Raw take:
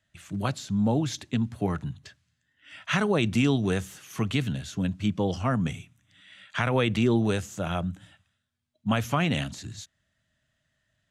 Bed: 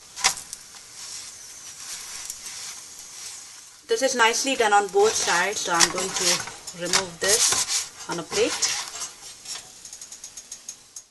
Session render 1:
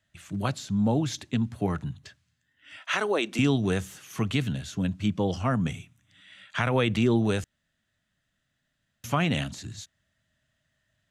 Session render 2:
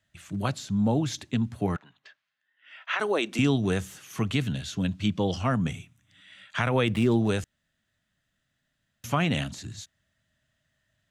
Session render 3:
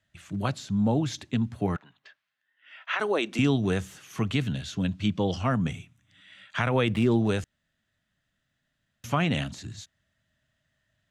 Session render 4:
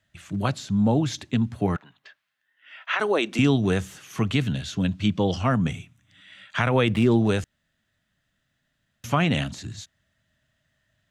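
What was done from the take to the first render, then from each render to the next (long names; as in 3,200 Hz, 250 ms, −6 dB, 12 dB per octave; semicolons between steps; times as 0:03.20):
0:02.77–0:03.39: high-pass filter 300 Hz 24 dB per octave; 0:07.44–0:09.04: fill with room tone
0:01.76–0:03.00: band-pass filter 690–3,000 Hz; 0:04.53–0:05.57: parametric band 3,700 Hz +5 dB 1.3 octaves; 0:06.87–0:07.29: running median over 9 samples
high-shelf EQ 8,400 Hz −7.5 dB
level +3.5 dB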